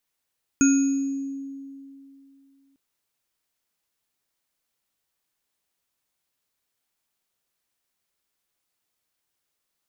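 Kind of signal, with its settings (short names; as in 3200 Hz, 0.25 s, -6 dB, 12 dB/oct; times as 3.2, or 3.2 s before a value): sine partials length 2.15 s, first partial 274 Hz, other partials 1420/2510/6660 Hz, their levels -12/-17/-7 dB, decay 2.75 s, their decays 0.58/0.86/1.09 s, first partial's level -14 dB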